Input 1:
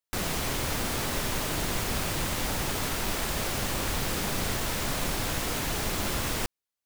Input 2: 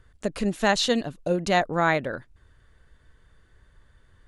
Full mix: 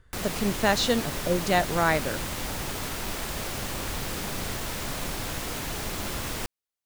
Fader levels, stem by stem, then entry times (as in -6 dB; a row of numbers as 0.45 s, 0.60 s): -2.5 dB, -1.5 dB; 0.00 s, 0.00 s